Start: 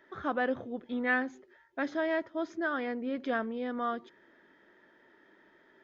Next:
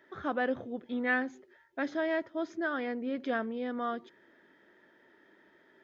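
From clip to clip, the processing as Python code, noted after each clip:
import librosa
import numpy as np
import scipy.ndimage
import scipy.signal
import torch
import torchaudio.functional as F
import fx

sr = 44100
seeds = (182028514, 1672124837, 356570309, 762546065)

y = scipy.signal.sosfilt(scipy.signal.butter(2, 53.0, 'highpass', fs=sr, output='sos'), x)
y = fx.peak_eq(y, sr, hz=1100.0, db=-2.5, octaves=0.77)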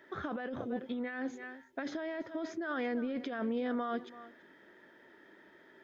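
y = x + 10.0 ** (-21.0 / 20.0) * np.pad(x, (int(332 * sr / 1000.0), 0))[:len(x)]
y = fx.over_compress(y, sr, threshold_db=-36.0, ratio=-1.0)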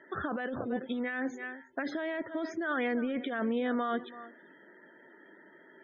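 y = fx.spec_topn(x, sr, count=64)
y = fx.dynamic_eq(y, sr, hz=2400.0, q=0.75, threshold_db=-56.0, ratio=4.0, max_db=4)
y = F.gain(torch.from_numpy(y), 3.0).numpy()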